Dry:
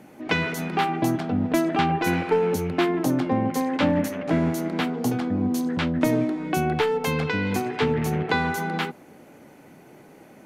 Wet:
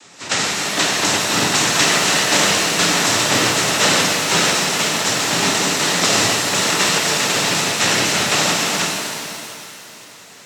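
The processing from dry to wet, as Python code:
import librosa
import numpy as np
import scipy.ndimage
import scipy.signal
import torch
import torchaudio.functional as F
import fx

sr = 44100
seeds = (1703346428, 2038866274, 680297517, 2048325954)

y = fx.spec_flatten(x, sr, power=0.16)
y = fx.noise_vocoder(y, sr, seeds[0], bands=12)
y = fx.rev_shimmer(y, sr, seeds[1], rt60_s=2.7, semitones=7, shimmer_db=-8, drr_db=-1.0)
y = F.gain(torch.from_numpy(y), 5.5).numpy()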